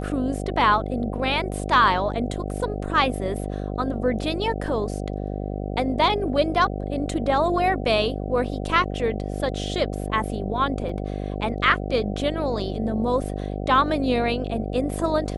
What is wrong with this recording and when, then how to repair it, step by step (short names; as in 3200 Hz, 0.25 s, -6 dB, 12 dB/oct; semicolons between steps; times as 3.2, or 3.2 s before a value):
buzz 50 Hz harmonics 15 -29 dBFS
10.89 gap 3.8 ms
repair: de-hum 50 Hz, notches 15; interpolate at 10.89, 3.8 ms